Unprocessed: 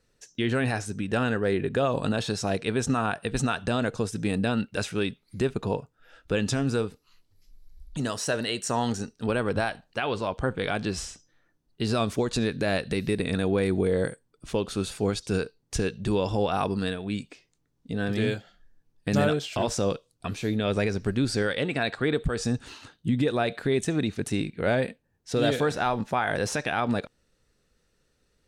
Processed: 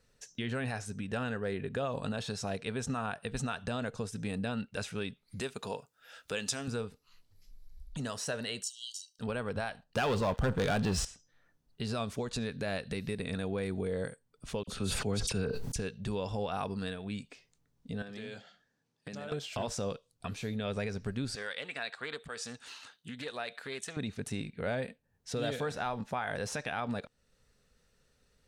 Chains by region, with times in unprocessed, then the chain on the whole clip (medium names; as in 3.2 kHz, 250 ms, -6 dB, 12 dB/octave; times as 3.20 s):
5.40–6.68 s: high-pass 370 Hz 6 dB/octave + treble shelf 3.4 kHz +11.5 dB
8.63–9.19 s: brick-wall FIR high-pass 2.7 kHz + comb 1.3 ms, depth 81%
9.83–11.05 s: bass shelf 380 Hz +5 dB + waveshaping leveller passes 3 + band-stop 2.2 kHz
14.63–15.76 s: bass shelf 330 Hz +5.5 dB + phase dispersion lows, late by 45 ms, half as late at 2.3 kHz + decay stretcher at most 24 dB/s
18.02–19.32 s: compression 12:1, threshold -31 dBFS + band-pass 180–6700 Hz + treble shelf 5 kHz +6 dB
21.35–23.97 s: high-pass 1.2 kHz 6 dB/octave + loudspeaker Doppler distortion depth 0.15 ms
whole clip: peaking EQ 330 Hz -12.5 dB 0.23 oct; compression 1.5:1, threshold -47 dBFS